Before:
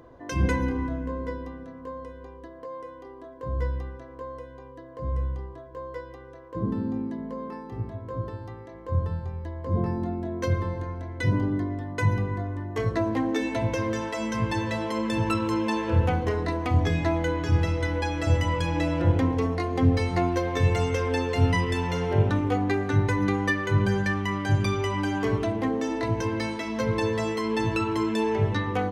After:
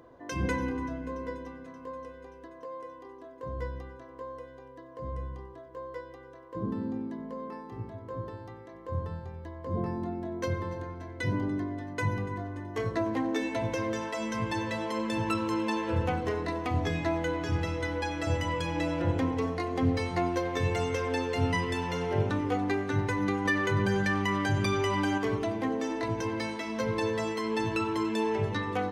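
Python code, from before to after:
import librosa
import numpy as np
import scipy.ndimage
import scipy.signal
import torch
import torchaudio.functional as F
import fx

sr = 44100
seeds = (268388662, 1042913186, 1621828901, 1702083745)

p1 = fx.low_shelf(x, sr, hz=100.0, db=-10.0)
p2 = p1 + fx.echo_thinned(p1, sr, ms=289, feedback_pct=77, hz=420.0, wet_db=-18.5, dry=0)
p3 = fx.env_flatten(p2, sr, amount_pct=50, at=(23.45, 25.18))
y = p3 * 10.0 ** (-3.0 / 20.0)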